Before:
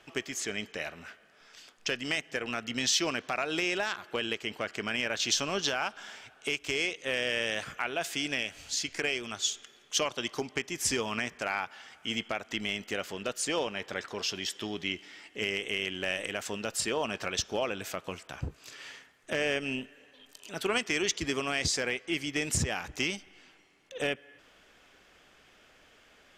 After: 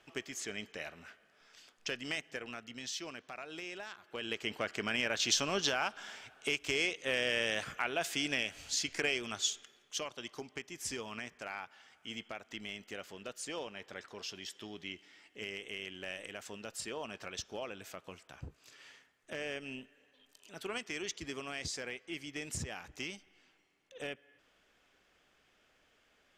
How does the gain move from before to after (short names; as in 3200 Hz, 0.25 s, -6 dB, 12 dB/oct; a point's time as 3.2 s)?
2.24 s -6.5 dB
2.8 s -14 dB
4.01 s -14 dB
4.42 s -2 dB
9.39 s -2 dB
10.03 s -10.5 dB